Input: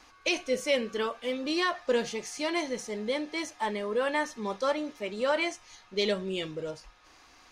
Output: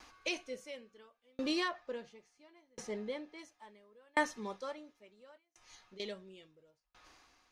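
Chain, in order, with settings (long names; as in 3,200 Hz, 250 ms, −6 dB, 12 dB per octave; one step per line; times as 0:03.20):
0:01.68–0:03.39: high-shelf EQ 4,800 Hz −11.5 dB
0:05.37–0:06.00: downward compressor 10 to 1, threshold −42 dBFS, peak gain reduction 17 dB
tremolo with a ramp in dB decaying 0.72 Hz, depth 39 dB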